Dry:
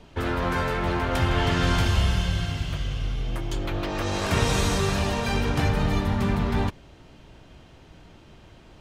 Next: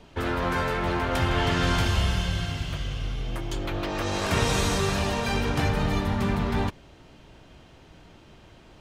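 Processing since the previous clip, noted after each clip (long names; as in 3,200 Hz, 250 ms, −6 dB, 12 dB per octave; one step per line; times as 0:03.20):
low-shelf EQ 180 Hz −3 dB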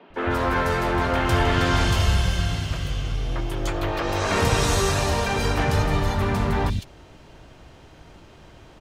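three-band delay without the direct sound mids, lows, highs 100/140 ms, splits 210/3,100 Hz
level +4.5 dB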